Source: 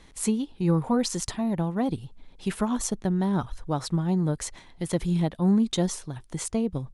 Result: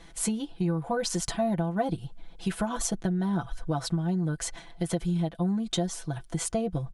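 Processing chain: comb 6 ms, depth 75%; compression 6:1, threshold -25 dBFS, peak gain reduction 12 dB; small resonant body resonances 700/1500/3100 Hz, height 9 dB

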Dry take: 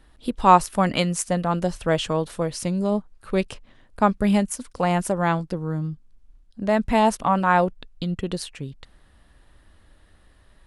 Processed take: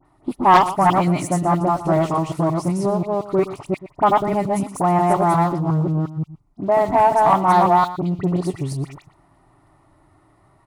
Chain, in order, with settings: chunks repeated in reverse 178 ms, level -0.5 dB; high-pass 75 Hz 12 dB/octave; resonant high shelf 2.4 kHz -10.5 dB, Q 3; in parallel at +3 dB: compression, threshold -31 dBFS, peak gain reduction 23.5 dB; on the sum: waveshaping leveller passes 1; static phaser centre 330 Hz, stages 8; phase dispersion highs, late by 54 ms, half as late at 2.1 kHz; wavefolder -1.5 dBFS; on a send: delay 119 ms -15 dB; on the sum: transformer saturation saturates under 540 Hz

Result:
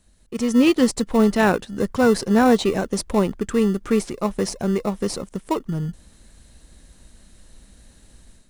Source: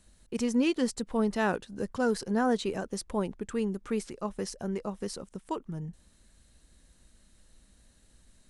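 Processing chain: level rider gain up to 10 dB; in parallel at -11.5 dB: sample-and-hold 28×

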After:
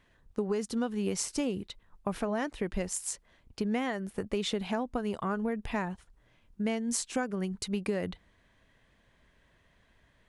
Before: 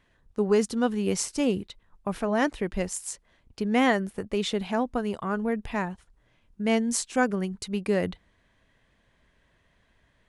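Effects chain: compression 12:1, threshold -27 dBFS, peak gain reduction 11.5 dB

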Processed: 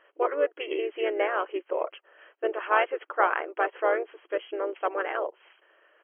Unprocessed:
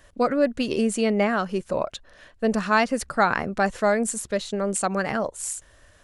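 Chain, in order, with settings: harmony voices -5 st -9 dB, -3 st -8 dB; brick-wall FIR band-pass 310–3300 Hz; trim -4 dB

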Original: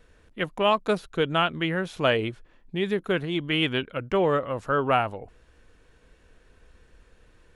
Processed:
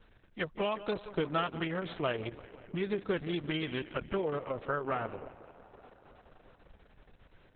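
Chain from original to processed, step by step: compression 10:1, threshold -24 dBFS, peak gain reduction 8.5 dB; tape echo 176 ms, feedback 81%, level -14 dB, low-pass 3.8 kHz; trim -3.5 dB; Opus 6 kbps 48 kHz

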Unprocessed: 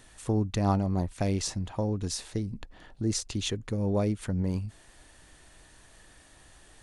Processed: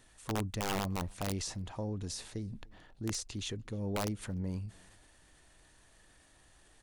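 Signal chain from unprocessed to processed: transient shaper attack -1 dB, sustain +5 dB; integer overflow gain 19 dB; echo from a far wall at 51 m, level -28 dB; trim -8 dB

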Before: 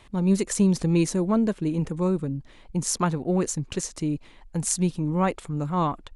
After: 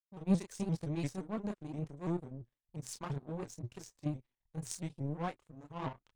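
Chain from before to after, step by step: gate -48 dBFS, range -49 dB; chorus voices 4, 0.34 Hz, delay 28 ms, depth 4.5 ms; in parallel at -5 dB: saturation -21 dBFS, distortion -14 dB; on the sum: peaking EQ 130 Hz +10.5 dB 0.25 oct; power-law waveshaper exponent 2; pitch shift -1 st; band-stop 1.3 kHz, Q 21; vibrato with a chosen wave saw up 5.8 Hz, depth 160 cents; trim -8 dB

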